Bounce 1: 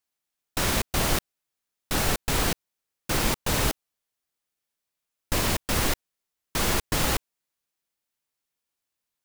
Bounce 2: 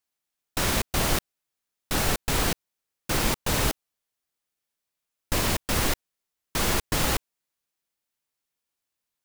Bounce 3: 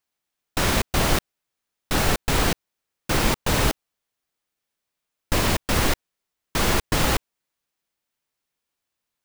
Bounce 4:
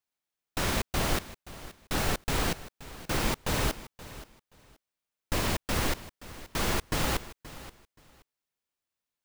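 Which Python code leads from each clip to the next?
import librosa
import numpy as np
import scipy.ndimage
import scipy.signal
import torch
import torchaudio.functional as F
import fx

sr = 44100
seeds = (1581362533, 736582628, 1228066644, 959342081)

y1 = x
y2 = fx.peak_eq(y1, sr, hz=15000.0, db=-5.0, octaves=1.8)
y2 = y2 * 10.0 ** (4.5 / 20.0)
y3 = fx.echo_feedback(y2, sr, ms=526, feedback_pct=20, wet_db=-16.5)
y3 = y3 * 10.0 ** (-7.5 / 20.0)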